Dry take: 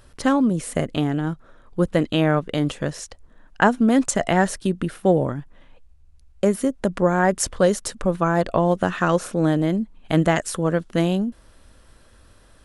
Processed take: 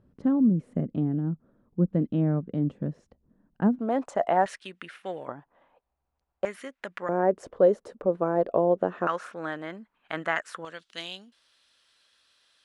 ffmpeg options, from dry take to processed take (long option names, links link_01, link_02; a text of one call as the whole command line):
ffmpeg -i in.wav -af "asetnsamples=nb_out_samples=441:pad=0,asendcmd='3.79 bandpass f 740;4.46 bandpass f 2200;5.28 bandpass f 820;6.45 bandpass f 2000;7.09 bandpass f 470;9.07 bandpass f 1500;10.65 bandpass f 3700',bandpass=frequency=200:width_type=q:width=1.7:csg=0" out.wav